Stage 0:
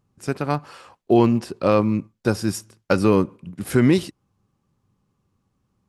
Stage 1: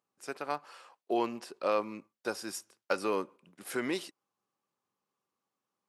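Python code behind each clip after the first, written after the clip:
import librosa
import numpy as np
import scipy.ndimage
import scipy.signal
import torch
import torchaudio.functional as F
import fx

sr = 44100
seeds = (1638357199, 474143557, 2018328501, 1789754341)

y = scipy.signal.sosfilt(scipy.signal.butter(2, 500.0, 'highpass', fs=sr, output='sos'), x)
y = F.gain(torch.from_numpy(y), -8.5).numpy()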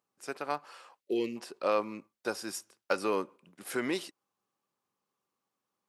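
y = fx.spec_box(x, sr, start_s=1.01, length_s=0.35, low_hz=580.0, high_hz=1800.0, gain_db=-21)
y = F.gain(torch.from_numpy(y), 1.0).numpy()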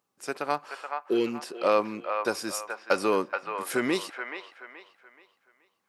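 y = fx.echo_wet_bandpass(x, sr, ms=427, feedback_pct=33, hz=1300.0, wet_db=-3.5)
y = F.gain(torch.from_numpy(y), 5.5).numpy()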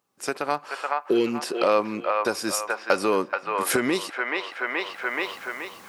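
y = fx.recorder_agc(x, sr, target_db=-15.5, rise_db_per_s=24.0, max_gain_db=30)
y = F.gain(torch.from_numpy(y), 2.0).numpy()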